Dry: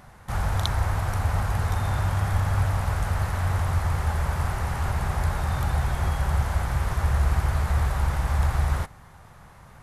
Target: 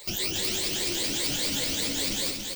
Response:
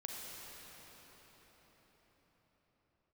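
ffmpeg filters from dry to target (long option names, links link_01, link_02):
-filter_complex "[0:a]afftfilt=real='re*pow(10,22/40*sin(2*PI*(0.98*log(max(b,1)*sr/1024/100)/log(2)-(1.3)*(pts-256)/sr)))':imag='im*pow(10,22/40*sin(2*PI*(0.98*log(max(b,1)*sr/1024/100)/log(2)-(1.3)*(pts-256)/sr)))':win_size=1024:overlap=0.75,bandreject=frequency=60.59:width_type=h:width=4,bandreject=frequency=121.18:width_type=h:width=4,bandreject=frequency=181.77:width_type=h:width=4,asplit=2[link_01][link_02];[link_02]acompressor=threshold=-29dB:ratio=12,volume=0dB[link_03];[link_01][link_03]amix=inputs=2:normalize=0,highshelf=frequency=4800:width_type=q:width=3:gain=6.5,alimiter=limit=-11.5dB:level=0:latency=1:release=96,equalizer=frequency=71:width_type=o:width=2.7:gain=-10,acompressor=mode=upward:threshold=-46dB:ratio=2.5,asplit=3[link_04][link_05][link_06];[link_05]asetrate=37084,aresample=44100,atempo=1.18921,volume=-13dB[link_07];[link_06]asetrate=58866,aresample=44100,atempo=0.749154,volume=-17dB[link_08];[link_04][link_07][link_08]amix=inputs=3:normalize=0,crystalizer=i=8:c=0,asetrate=169344,aresample=44100,flanger=delay=6.3:depth=6.5:regen=-13:speed=1.5:shape=triangular,asplit=2[link_09][link_10];[link_10]aecho=0:1:281|562|843|1124:0.562|0.202|0.0729|0.0262[link_11];[link_09][link_11]amix=inputs=2:normalize=0,volume=-4.5dB"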